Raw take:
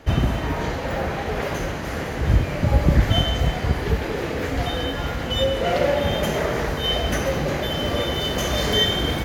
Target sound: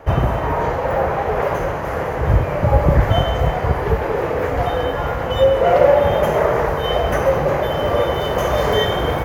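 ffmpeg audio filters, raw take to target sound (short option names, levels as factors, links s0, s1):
-af "equalizer=f=125:t=o:w=1:g=3,equalizer=f=250:t=o:w=1:g=-6,equalizer=f=500:t=o:w=1:g=7,equalizer=f=1000:t=o:w=1:g=8,equalizer=f=4000:t=o:w=1:g=-9,equalizer=f=8000:t=o:w=1:g=-6,volume=1.19"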